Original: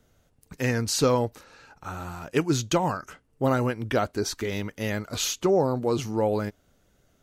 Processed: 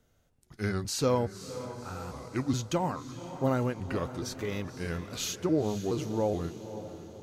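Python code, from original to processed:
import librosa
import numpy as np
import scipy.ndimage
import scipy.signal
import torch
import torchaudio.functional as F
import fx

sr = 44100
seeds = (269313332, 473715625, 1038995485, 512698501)

y = fx.pitch_trill(x, sr, semitones=-3.5, every_ms=422)
y = fx.hpss(y, sr, part='harmonic', gain_db=5)
y = fx.echo_diffused(y, sr, ms=522, feedback_pct=51, wet_db=-12)
y = y * librosa.db_to_amplitude(-8.5)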